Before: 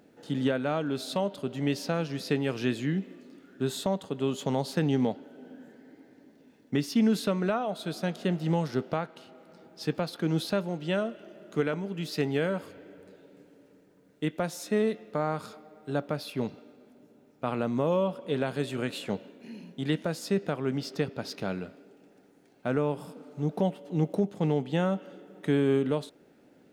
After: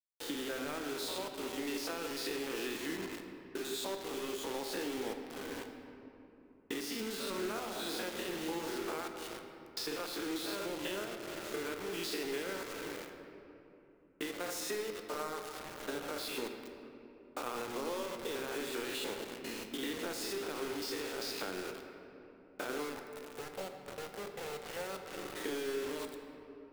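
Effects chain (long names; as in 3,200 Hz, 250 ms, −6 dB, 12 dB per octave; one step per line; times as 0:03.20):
spectrum averaged block by block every 100 ms
high-pass filter 340 Hz 24 dB per octave
noise gate −55 dBFS, range −9 dB
parametric band 630 Hz −10 dB 0.6 octaves
downward compressor 10 to 1, threshold −48 dBFS, peak gain reduction 21 dB
0:22.93–0:24.87: phaser with its sweep stopped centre 1,100 Hz, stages 6
bit reduction 9 bits
convolution reverb RT60 3.1 s, pre-delay 6 ms, DRR 4.5 dB
level +10.5 dB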